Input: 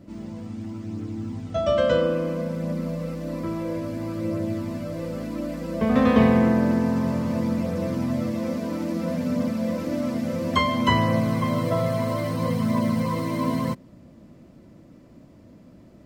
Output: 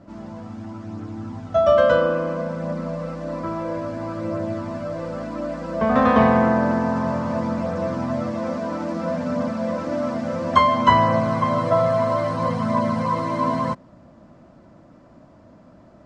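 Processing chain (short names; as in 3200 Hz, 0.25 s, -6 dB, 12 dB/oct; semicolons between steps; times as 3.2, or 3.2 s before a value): LPF 7600 Hz 24 dB/oct; band shelf 990 Hz +9.5 dB; gain -1 dB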